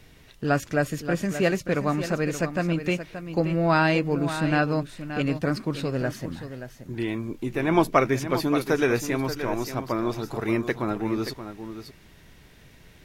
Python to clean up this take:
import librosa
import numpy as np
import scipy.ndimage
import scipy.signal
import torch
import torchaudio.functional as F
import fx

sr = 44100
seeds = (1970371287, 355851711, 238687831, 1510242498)

y = fx.fix_echo_inverse(x, sr, delay_ms=577, level_db=-10.5)